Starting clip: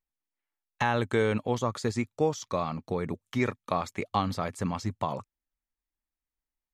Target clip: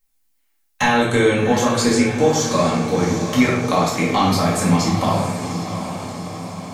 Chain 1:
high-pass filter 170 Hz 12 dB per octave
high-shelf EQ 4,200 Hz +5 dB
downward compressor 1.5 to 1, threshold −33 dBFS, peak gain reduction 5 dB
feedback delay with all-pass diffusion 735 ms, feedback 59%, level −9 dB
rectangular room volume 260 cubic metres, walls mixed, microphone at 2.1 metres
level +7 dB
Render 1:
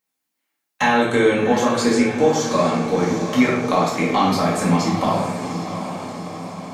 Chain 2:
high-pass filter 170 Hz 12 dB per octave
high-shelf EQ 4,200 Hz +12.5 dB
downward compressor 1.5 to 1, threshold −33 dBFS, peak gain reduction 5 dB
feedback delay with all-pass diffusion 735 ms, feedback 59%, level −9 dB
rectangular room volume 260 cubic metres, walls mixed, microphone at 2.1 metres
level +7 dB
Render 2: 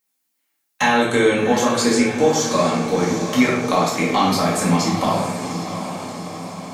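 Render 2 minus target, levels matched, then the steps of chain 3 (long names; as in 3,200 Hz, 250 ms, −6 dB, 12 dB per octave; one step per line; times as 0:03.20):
125 Hz band −4.0 dB
high-shelf EQ 4,200 Hz +12.5 dB
downward compressor 1.5 to 1, threshold −33 dBFS, peak gain reduction 5 dB
feedback delay with all-pass diffusion 735 ms, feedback 59%, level −9 dB
rectangular room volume 260 cubic metres, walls mixed, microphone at 2.1 metres
level +7 dB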